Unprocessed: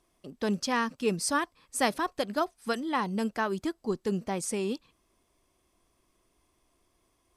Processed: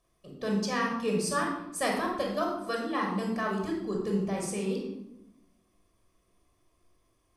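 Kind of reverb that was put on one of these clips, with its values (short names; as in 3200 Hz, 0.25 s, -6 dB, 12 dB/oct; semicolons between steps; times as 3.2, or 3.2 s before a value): shoebox room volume 2700 m³, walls furnished, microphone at 5.9 m; gain -6.5 dB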